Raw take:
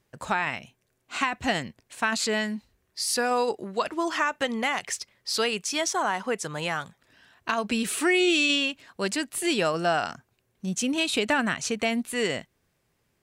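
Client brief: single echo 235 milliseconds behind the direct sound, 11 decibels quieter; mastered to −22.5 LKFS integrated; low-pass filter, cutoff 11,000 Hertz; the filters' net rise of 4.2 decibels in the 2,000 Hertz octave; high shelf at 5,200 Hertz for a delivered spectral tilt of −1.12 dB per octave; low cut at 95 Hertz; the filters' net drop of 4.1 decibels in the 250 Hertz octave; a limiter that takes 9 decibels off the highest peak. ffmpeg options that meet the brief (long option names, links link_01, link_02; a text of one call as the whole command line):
ffmpeg -i in.wav -af "highpass=95,lowpass=11000,equalizer=frequency=250:width_type=o:gain=-5.5,equalizer=frequency=2000:width_type=o:gain=4,highshelf=frequency=5200:gain=8.5,alimiter=limit=-15.5dB:level=0:latency=1,aecho=1:1:235:0.282,volume=3.5dB" out.wav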